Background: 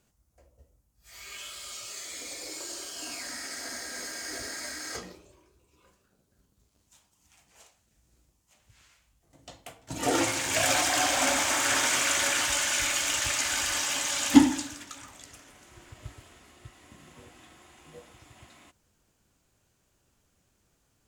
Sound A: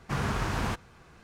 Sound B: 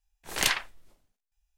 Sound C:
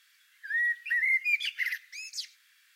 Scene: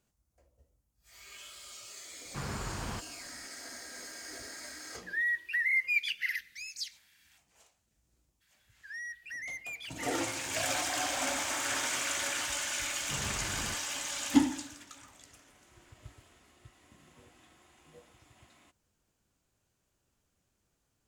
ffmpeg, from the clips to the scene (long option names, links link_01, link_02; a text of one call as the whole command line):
ffmpeg -i bed.wav -i cue0.wav -i cue1.wav -i cue2.wav -filter_complex "[1:a]asplit=2[link_01][link_02];[3:a]asplit=2[link_03][link_04];[0:a]volume=-7.5dB[link_05];[link_03]highpass=1400[link_06];[link_04]asoftclip=type=tanh:threshold=-30dB[link_07];[link_01]atrim=end=1.23,asetpts=PTS-STARTPTS,volume=-8.5dB,afade=type=in:duration=0.004:curve=hsin,afade=type=out:start_time=1.226:duration=0.004:curve=hsin,adelay=2250[link_08];[link_06]atrim=end=2.75,asetpts=PTS-STARTPTS,volume=-1.5dB,afade=type=in:duration=0.004:curve=hsin,afade=type=out:start_time=2.746:duration=0.004:curve=hsin,adelay=4630[link_09];[link_07]atrim=end=2.75,asetpts=PTS-STARTPTS,volume=-8.5dB,afade=type=in:duration=0.02,afade=type=out:start_time=2.73:duration=0.02,adelay=8400[link_10];[link_02]atrim=end=1.23,asetpts=PTS-STARTPTS,volume=-10.5dB,afade=type=in:duration=0.004:curve=hsin,afade=type=out:start_time=1.226:duration=0.004:curve=hsin,adelay=573300S[link_11];[link_05][link_08][link_09][link_10][link_11]amix=inputs=5:normalize=0" out.wav